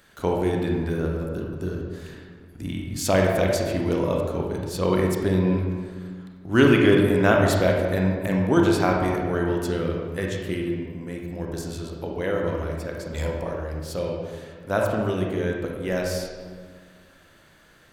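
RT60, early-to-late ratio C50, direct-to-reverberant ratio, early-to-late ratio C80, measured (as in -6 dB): 1.7 s, 1.0 dB, -0.5 dB, 3.5 dB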